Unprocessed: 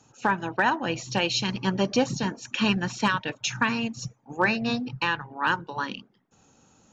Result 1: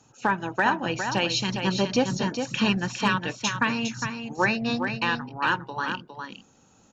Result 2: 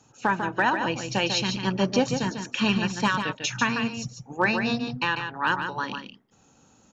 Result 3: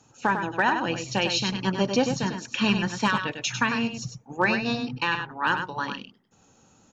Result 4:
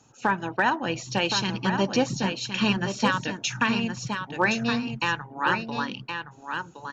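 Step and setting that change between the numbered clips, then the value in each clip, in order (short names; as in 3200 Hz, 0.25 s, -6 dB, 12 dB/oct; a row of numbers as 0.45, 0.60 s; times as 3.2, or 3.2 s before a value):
echo, time: 408, 146, 99, 1068 ms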